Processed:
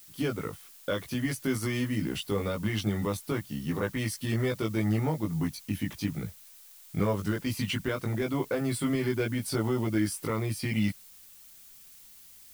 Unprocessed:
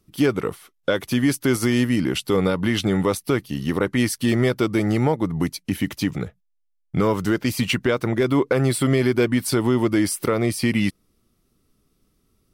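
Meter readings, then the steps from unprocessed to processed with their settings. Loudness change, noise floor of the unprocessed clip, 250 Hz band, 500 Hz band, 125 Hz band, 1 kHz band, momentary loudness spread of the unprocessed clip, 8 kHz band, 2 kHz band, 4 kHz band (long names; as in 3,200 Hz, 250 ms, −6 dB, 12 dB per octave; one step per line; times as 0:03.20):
−9.0 dB, −69 dBFS, −9.5 dB, −10.5 dB, −6.5 dB, −9.5 dB, 7 LU, −9.0 dB, −9.0 dB, −9.0 dB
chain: multi-voice chorus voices 6, 0.19 Hz, delay 19 ms, depth 1 ms
background noise blue −46 dBFS
level −6.5 dB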